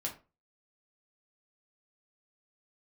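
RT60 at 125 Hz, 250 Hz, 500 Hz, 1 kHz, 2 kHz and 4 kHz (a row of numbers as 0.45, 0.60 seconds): 0.35, 0.35, 0.35, 0.30, 0.25, 0.20 seconds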